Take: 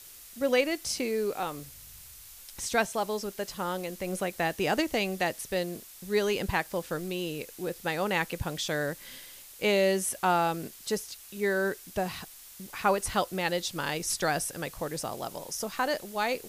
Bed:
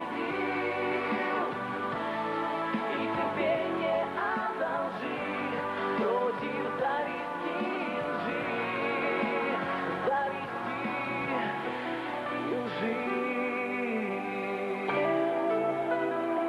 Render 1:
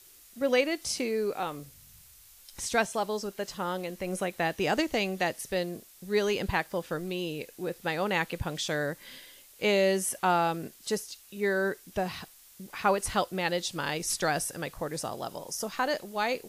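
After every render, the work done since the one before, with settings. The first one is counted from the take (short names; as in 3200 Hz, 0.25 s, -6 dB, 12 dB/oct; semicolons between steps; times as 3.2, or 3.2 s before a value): noise print and reduce 6 dB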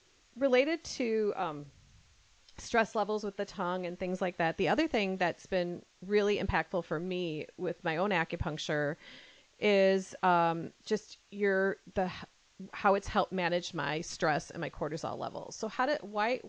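elliptic low-pass 6800 Hz, stop band 50 dB; high shelf 3700 Hz -10.5 dB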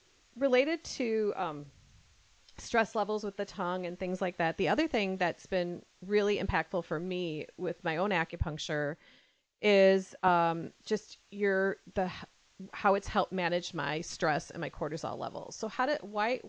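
8.3–10.28 three-band expander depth 70%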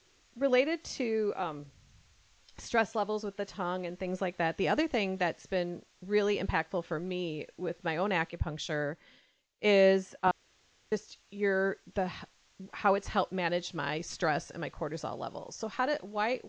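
10.31–10.92 room tone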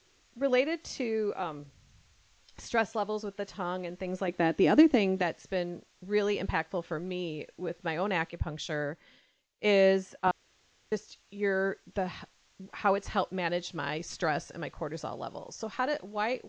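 4.28–5.22 bell 290 Hz +13 dB 0.87 oct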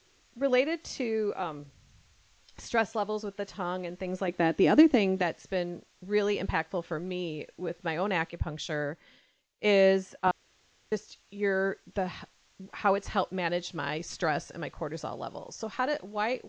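gain +1 dB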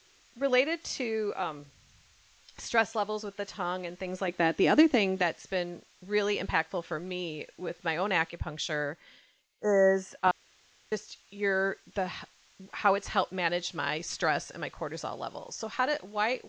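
9.51–10.1 spectral repair 2000–5200 Hz both; tilt shelf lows -4 dB, about 650 Hz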